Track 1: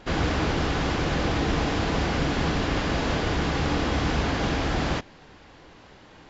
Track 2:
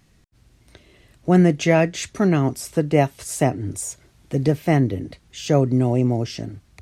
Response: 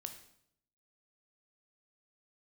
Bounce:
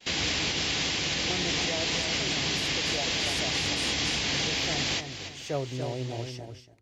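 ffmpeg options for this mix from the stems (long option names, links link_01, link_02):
-filter_complex "[0:a]highpass=76,aexciter=amount=6.4:drive=4.4:freq=2000,volume=-5dB,asplit=3[link_01][link_02][link_03];[link_02]volume=-14.5dB[link_04];[link_03]volume=-14.5dB[link_05];[1:a]equalizer=frequency=210:width_type=o:width=0.92:gain=-15,volume=-10dB,asplit=2[link_06][link_07];[link_07]volume=-6.5dB[link_08];[2:a]atrim=start_sample=2205[link_09];[link_04][link_09]afir=irnorm=-1:irlink=0[link_10];[link_05][link_08]amix=inputs=2:normalize=0,aecho=0:1:287|574|861:1|0.21|0.0441[link_11];[link_01][link_06][link_10][link_11]amix=inputs=4:normalize=0,agate=range=-33dB:threshold=-42dB:ratio=3:detection=peak,alimiter=limit=-18.5dB:level=0:latency=1:release=274"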